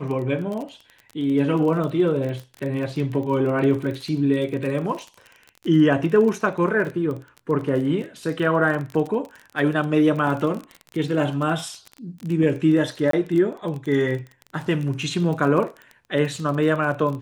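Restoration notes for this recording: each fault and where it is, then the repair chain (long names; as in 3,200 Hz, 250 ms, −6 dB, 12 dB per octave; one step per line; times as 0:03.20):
surface crackle 27 per second −28 dBFS
0:13.11–0:13.13: drop-out 23 ms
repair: click removal
repair the gap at 0:13.11, 23 ms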